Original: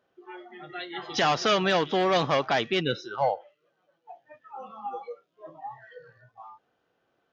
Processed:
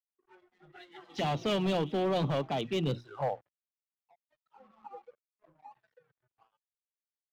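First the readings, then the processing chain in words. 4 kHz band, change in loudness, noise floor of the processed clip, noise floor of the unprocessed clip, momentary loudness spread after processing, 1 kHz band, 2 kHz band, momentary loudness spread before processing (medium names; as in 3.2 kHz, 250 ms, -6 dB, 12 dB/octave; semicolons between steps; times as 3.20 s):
-10.0 dB, -5.5 dB, under -85 dBFS, -75 dBFS, 21 LU, -9.5 dB, -13.5 dB, 21 LU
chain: high-pass 78 Hz 12 dB/octave; hum notches 60/120/180/240/300/360 Hz; touch-sensitive flanger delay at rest 9.3 ms, full sweep at -23 dBFS; tone controls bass +9 dB, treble -4 dB; vibrato 0.49 Hz 18 cents; crossover distortion -52.5 dBFS; treble shelf 5.8 kHz -11.5 dB; hard clipper -20.5 dBFS, distortion -14 dB; three bands expanded up and down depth 40%; trim -4.5 dB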